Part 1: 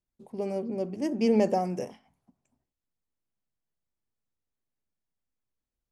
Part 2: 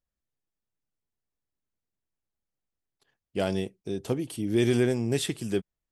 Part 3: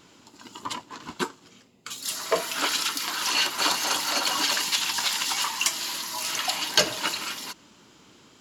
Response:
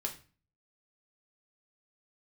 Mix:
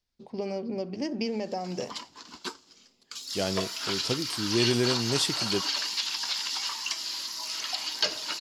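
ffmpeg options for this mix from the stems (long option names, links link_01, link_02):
-filter_complex "[0:a]lowpass=4100,equalizer=frequency=3100:width=0.36:gain=5,acompressor=threshold=-30dB:ratio=12,volume=2dB[link_01];[1:a]volume=-2.5dB[link_02];[2:a]acrossover=split=4100[link_03][link_04];[link_04]acompressor=threshold=-34dB:ratio=4:attack=1:release=60[link_05];[link_03][link_05]amix=inputs=2:normalize=0,equalizer=frequency=130:width_type=o:width=0.77:gain=-10,adelay=1250,volume=-9.5dB[link_06];[link_01][link_02][link_06]amix=inputs=3:normalize=0,equalizer=frequency=5000:width=1.5:gain=13.5"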